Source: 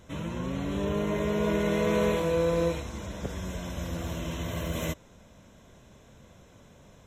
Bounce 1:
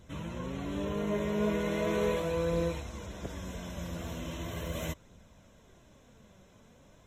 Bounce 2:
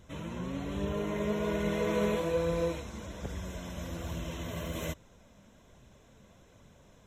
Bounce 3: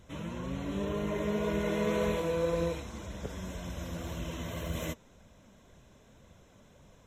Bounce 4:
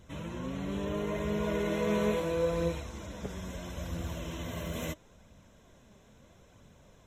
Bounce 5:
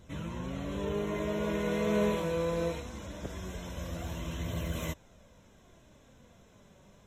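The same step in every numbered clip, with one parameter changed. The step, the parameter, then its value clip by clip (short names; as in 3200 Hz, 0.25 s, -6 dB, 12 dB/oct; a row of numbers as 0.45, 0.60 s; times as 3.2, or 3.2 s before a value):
flange, rate: 0.39, 1.2, 1.9, 0.75, 0.22 Hz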